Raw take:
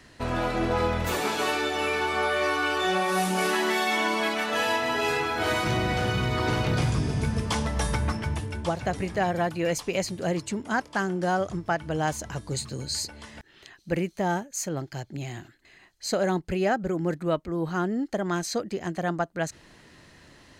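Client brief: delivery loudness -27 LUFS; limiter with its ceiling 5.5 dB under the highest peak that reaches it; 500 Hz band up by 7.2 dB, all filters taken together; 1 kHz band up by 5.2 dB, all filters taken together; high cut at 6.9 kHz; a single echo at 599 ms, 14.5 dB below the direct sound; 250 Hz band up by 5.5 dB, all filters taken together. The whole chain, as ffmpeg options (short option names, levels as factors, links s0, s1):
-af "lowpass=6900,equalizer=f=250:t=o:g=5.5,equalizer=f=500:t=o:g=6.5,equalizer=f=1000:t=o:g=4,alimiter=limit=0.211:level=0:latency=1,aecho=1:1:599:0.188,volume=0.708"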